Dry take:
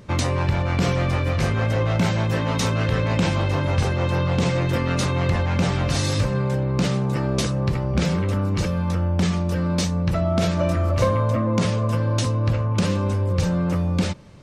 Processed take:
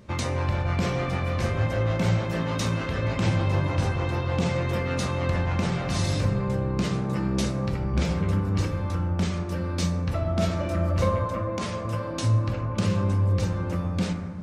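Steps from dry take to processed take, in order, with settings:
0:11.09–0:11.85: low-shelf EQ 210 Hz −11 dB
convolution reverb RT60 2.0 s, pre-delay 7 ms, DRR 3 dB
level −6 dB

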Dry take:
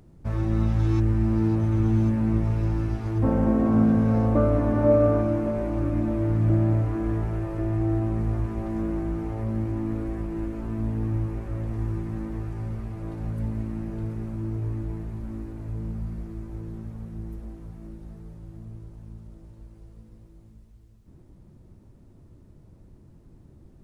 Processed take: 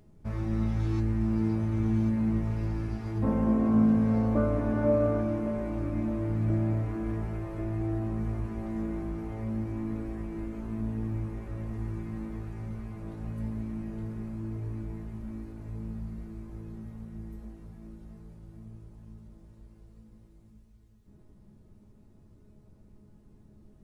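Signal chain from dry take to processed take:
tuned comb filter 210 Hz, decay 0.28 s, harmonics all, mix 80%
level +5.5 dB

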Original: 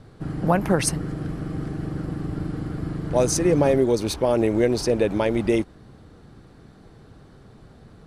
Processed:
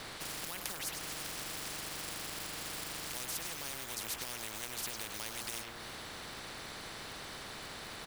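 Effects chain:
hum removal 58.7 Hz, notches 30
downward compressor 16 to 1, threshold −29 dBFS, peak gain reduction 15 dB
floating-point word with a short mantissa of 4 bits
far-end echo of a speakerphone 100 ms, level −12 dB
every bin compressed towards the loudest bin 10 to 1
level +1.5 dB

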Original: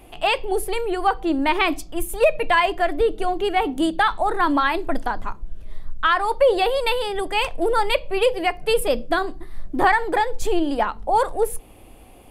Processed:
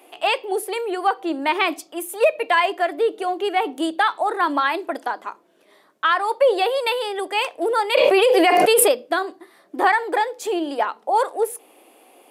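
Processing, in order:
high-pass filter 320 Hz 24 dB per octave
0:07.95–0:08.92: envelope flattener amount 100%

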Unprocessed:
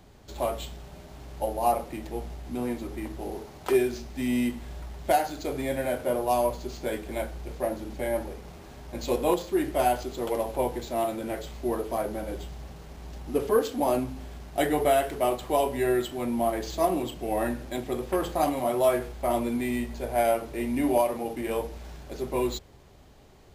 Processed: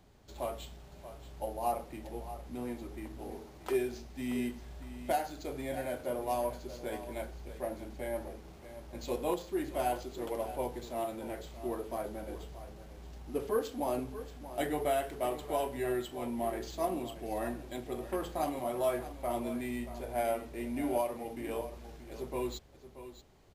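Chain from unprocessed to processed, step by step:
single-tap delay 630 ms −13 dB
level −8.5 dB

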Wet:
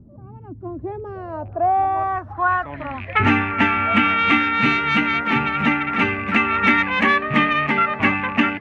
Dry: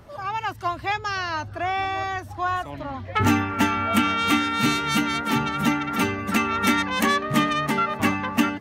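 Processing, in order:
loose part that buzzes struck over −33 dBFS, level −28 dBFS
low-pass filter sweep 240 Hz → 2,300 Hz, 0:00.35–0:02.98
level +1.5 dB

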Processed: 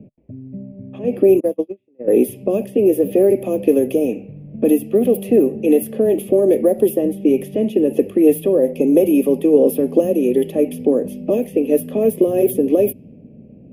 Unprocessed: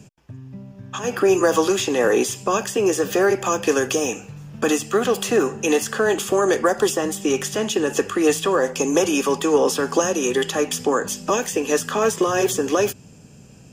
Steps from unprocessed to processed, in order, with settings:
0:01.40–0:02.08: noise gate −14 dBFS, range −42 dB
low-pass that shuts in the quiet parts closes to 1,700 Hz, open at −15.5 dBFS
drawn EQ curve 140 Hz 0 dB, 240 Hz +10 dB, 420 Hz +4 dB, 600 Hz +6 dB, 870 Hz −16 dB, 1,500 Hz −30 dB, 2,200 Hz −6 dB, 4,600 Hz −23 dB, 7,400 Hz −28 dB, 11,000 Hz +9 dB

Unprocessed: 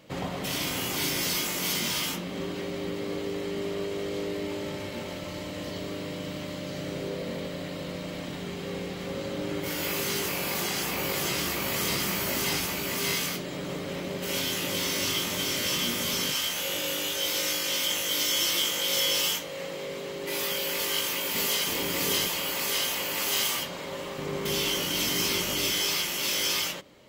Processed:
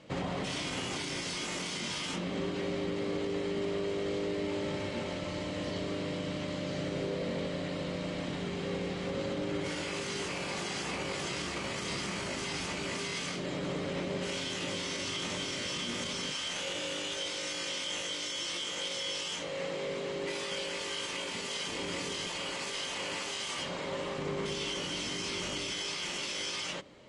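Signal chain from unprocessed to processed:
brickwall limiter −25 dBFS, peak gain reduction 11 dB
Butterworth low-pass 9,900 Hz 72 dB per octave
high-shelf EQ 6,300 Hz −6.5 dB

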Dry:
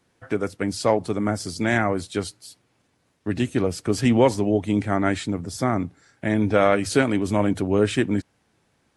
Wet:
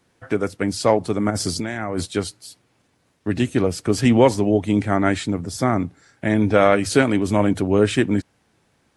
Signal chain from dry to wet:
0:01.30–0:02.06: compressor whose output falls as the input rises −28 dBFS, ratio −1
level +3 dB

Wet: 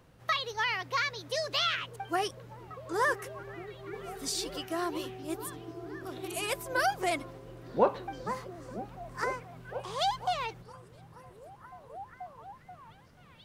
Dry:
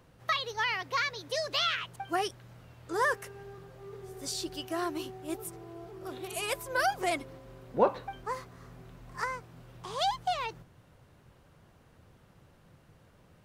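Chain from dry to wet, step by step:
0:03.93–0:04.54: comb filter 4.4 ms, depth 89%
echo through a band-pass that steps 483 ms, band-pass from 150 Hz, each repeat 0.7 octaves, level −4 dB

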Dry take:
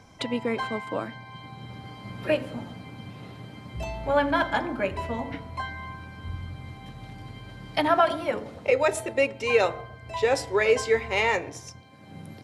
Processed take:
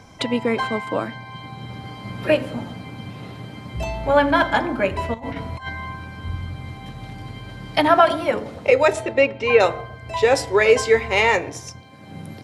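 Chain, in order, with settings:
0:05.14–0:05.69: compressor whose output falls as the input rises −36 dBFS, ratio −0.5
0:08.92–0:09.59: low-pass filter 6,100 Hz → 2,800 Hz 12 dB per octave
level +6.5 dB

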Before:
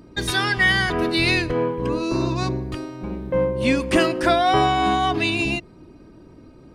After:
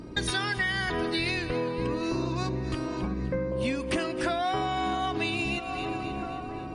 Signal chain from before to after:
0:03.07–0:03.52: phaser with its sweep stopped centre 3,000 Hz, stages 6
on a send: echo with a time of its own for lows and highs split 1,600 Hz, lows 651 ms, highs 264 ms, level −16 dB
on the sum: downward compressor 6 to 1, threshold −31 dBFS, peak gain reduction 17 dB
level +4.5 dB
MP3 48 kbit/s 48,000 Hz

